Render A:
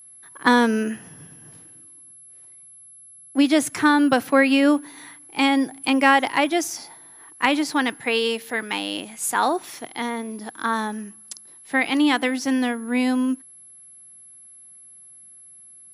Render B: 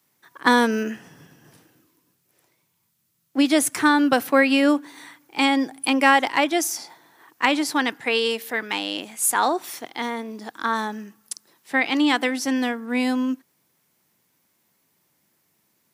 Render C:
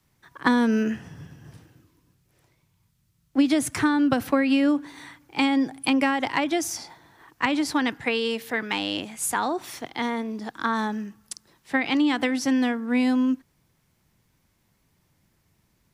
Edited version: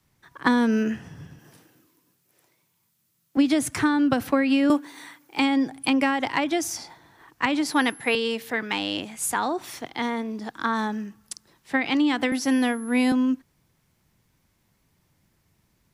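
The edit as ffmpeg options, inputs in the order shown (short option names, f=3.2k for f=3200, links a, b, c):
-filter_complex "[1:a]asplit=2[a][b];[0:a]asplit=2[c][d];[2:a]asplit=5[e][f][g][h][i];[e]atrim=end=1.392[j];[a]atrim=start=1.388:end=3.372[k];[f]atrim=start=3.368:end=4.702[l];[b]atrim=start=4.698:end=5.392[m];[g]atrim=start=5.388:end=7.662[n];[c]atrim=start=7.658:end=8.152[o];[h]atrim=start=8.148:end=12.322[p];[d]atrim=start=12.318:end=13.122[q];[i]atrim=start=13.118[r];[j][k]acrossfade=d=0.004:c1=hsin:c2=hsin[s];[s][l]acrossfade=d=0.004:c1=hsin:c2=hsin[t];[t][m]acrossfade=d=0.004:c1=hsin:c2=hsin[u];[u][n]acrossfade=d=0.004:c1=hsin:c2=hsin[v];[v][o]acrossfade=d=0.004:c1=hsin:c2=hsin[w];[w][p]acrossfade=d=0.004:c1=hsin:c2=hsin[x];[x][q]acrossfade=d=0.004:c1=hsin:c2=hsin[y];[y][r]acrossfade=d=0.004:c1=hsin:c2=hsin"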